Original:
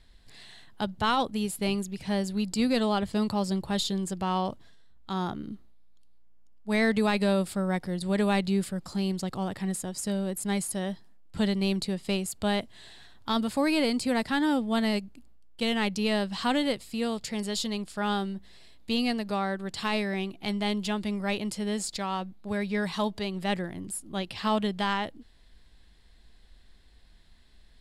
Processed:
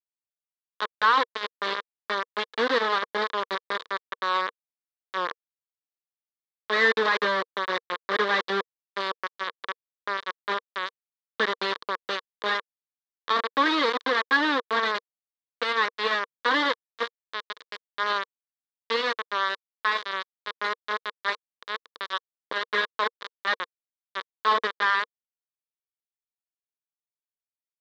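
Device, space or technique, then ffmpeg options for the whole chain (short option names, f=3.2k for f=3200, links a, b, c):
hand-held game console: -filter_complex "[0:a]asettb=1/sr,asplit=3[a][b][c];[a]atrim=end=9.394[d];[b]atrim=start=9.39:end=11.58,asetpts=PTS-STARTPTS,afade=t=in:d=0.004:c=qsin,afade=t=out:st=2.186:d=0.004:c=qsin,acrossover=split=2800[e][f];[f]acompressor=threshold=-44dB:ratio=4:attack=1:release=60[g];[e][g]amix=inputs=2:normalize=0[h];[c]atrim=start=11.576[i];[d][h]acrossfade=d=0.004:c1=hsin:c2=qsin[j];[j][i]acrossfade=d=0.004:c1=qsin:c2=hsin,superequalizer=6b=1.58:8b=0.562:11b=1.78:13b=0.501:15b=0.631,acrusher=bits=3:mix=0:aa=0.000001,highpass=460,equalizer=f=470:t=q:w=4:g=8,equalizer=f=760:t=q:w=4:g=-8,equalizer=f=1.1k:t=q:w=4:g=10,equalizer=f=1.7k:t=q:w=4:g=6,equalizer=f=2.6k:t=q:w=4:g=-8,equalizer=f=3.7k:t=q:w=4:g=7,lowpass=f=4k:w=0.5412,lowpass=f=4k:w=1.3066"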